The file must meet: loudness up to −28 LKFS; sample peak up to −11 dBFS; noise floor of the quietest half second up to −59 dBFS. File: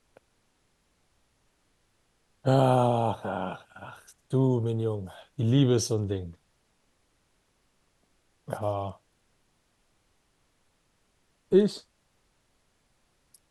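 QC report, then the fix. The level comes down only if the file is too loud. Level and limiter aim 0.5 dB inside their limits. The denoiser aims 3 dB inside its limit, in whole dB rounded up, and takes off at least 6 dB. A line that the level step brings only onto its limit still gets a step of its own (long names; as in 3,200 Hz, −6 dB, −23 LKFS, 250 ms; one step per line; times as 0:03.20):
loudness −26.5 LKFS: out of spec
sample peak −9.5 dBFS: out of spec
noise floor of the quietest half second −70 dBFS: in spec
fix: level −2 dB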